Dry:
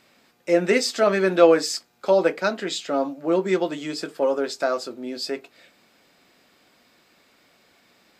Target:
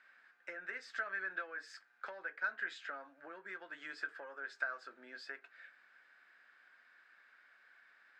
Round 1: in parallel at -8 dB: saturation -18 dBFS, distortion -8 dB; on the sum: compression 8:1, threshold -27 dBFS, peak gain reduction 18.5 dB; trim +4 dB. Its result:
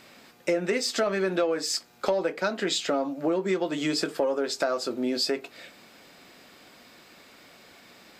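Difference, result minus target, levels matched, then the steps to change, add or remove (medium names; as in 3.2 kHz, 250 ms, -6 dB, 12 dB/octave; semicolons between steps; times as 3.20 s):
2 kHz band -11.5 dB
add after compression: band-pass filter 1.6 kHz, Q 7.9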